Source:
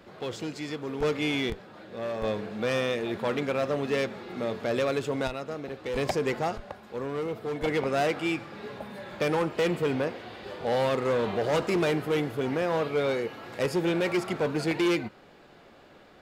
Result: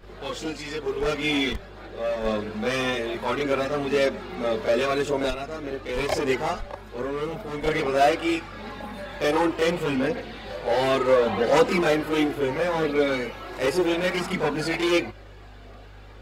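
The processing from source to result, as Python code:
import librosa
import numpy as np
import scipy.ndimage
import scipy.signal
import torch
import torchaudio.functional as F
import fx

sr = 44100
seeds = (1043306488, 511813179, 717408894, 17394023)

y = fx.low_shelf(x, sr, hz=350.0, db=-4.0)
y = fx.add_hum(y, sr, base_hz=50, snr_db=23)
y = fx.chorus_voices(y, sr, voices=6, hz=0.18, base_ms=30, depth_ms=2.8, mix_pct=65)
y = F.gain(torch.from_numpy(y), 8.0).numpy()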